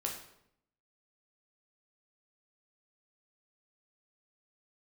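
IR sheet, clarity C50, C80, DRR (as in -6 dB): 6.0 dB, 9.0 dB, -0.5 dB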